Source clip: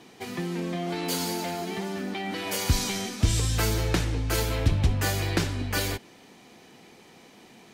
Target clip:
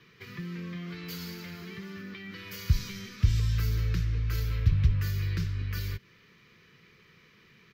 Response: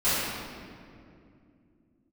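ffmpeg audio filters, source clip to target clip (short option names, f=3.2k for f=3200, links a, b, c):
-filter_complex "[0:a]firequalizer=gain_entry='entry(150,0);entry(260,-17);entry(430,-8);entry(770,-28);entry(1100,-4);entry(2000,-1);entry(3300,-7);entry(5100,-8);entry(8900,-27);entry(14000,-7)':delay=0.05:min_phase=1,acrossover=split=300|4500[a][b][c];[b]acompressor=threshold=-45dB:ratio=4[d];[a][d][c]amix=inputs=3:normalize=0"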